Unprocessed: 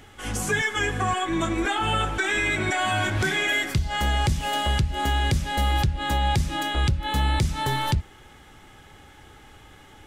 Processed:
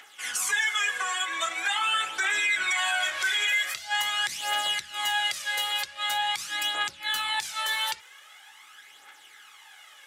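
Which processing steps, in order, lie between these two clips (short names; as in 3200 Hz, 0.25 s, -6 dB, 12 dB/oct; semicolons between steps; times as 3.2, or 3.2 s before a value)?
HPF 1400 Hz 12 dB/oct; phaser 0.44 Hz, delay 2.2 ms, feedback 55%; limiter -19.5 dBFS, peak gain reduction 7.5 dB; gain +2.5 dB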